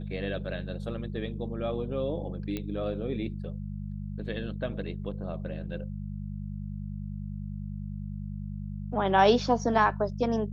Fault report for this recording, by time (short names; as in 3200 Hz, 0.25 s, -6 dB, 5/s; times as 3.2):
hum 50 Hz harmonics 4 -36 dBFS
2.57 pop -20 dBFS